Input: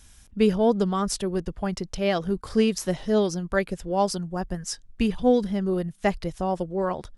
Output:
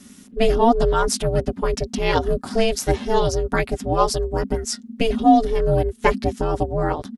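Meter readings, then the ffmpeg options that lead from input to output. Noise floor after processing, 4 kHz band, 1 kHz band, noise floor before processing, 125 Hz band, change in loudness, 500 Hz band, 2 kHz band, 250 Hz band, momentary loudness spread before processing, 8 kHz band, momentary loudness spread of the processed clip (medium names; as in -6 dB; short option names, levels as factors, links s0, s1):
-46 dBFS, +5.5 dB, +9.0 dB, -53 dBFS, +5.5 dB, +4.5 dB, +4.5 dB, +5.5 dB, +1.5 dB, 9 LU, +5.5 dB, 8 LU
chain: -af "aecho=1:1:6:0.93,aeval=exprs='val(0)*sin(2*PI*230*n/s)':c=same,volume=2"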